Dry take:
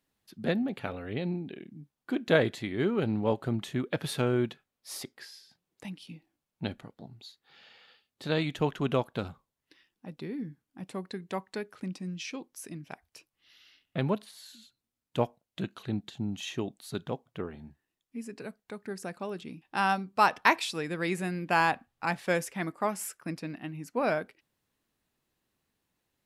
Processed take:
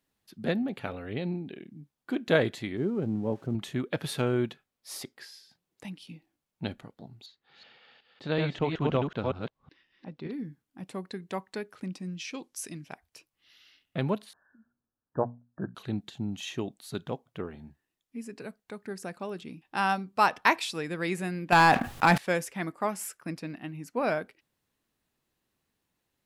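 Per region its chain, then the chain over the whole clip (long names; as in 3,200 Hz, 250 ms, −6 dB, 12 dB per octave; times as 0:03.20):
0:02.77–0:03.55: spike at every zero crossing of −27.5 dBFS + resonant band-pass 190 Hz, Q 0.55
0:07.26–0:10.32: delay that plays each chunk backwards 187 ms, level −2.5 dB + high-frequency loss of the air 140 metres
0:12.34–0:12.87: low-pass filter 10,000 Hz + high-shelf EQ 2,500 Hz +9.5 dB + one half of a high-frequency compander decoder only
0:14.33–0:15.75: linear-phase brick-wall low-pass 1,800 Hz + mains-hum notches 60/120/180/240 Hz
0:21.52–0:22.18: leveller curve on the samples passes 2 + envelope flattener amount 70%
whole clip: no processing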